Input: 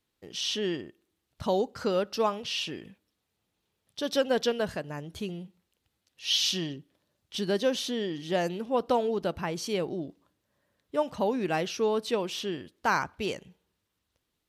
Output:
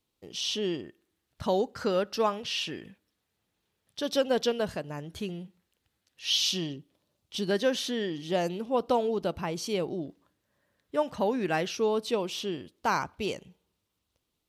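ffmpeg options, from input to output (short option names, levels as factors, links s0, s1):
-af "asetnsamples=n=441:p=0,asendcmd='0.84 equalizer g 3;4.03 equalizer g -3.5;4.99 equalizer g 3.5;6.3 equalizer g -6.5;7.51 equalizer g 4.5;8.1 equalizer g -4.5;10.06 equalizer g 3;11.75 equalizer g -6',equalizer=f=1700:t=o:w=0.48:g=-8"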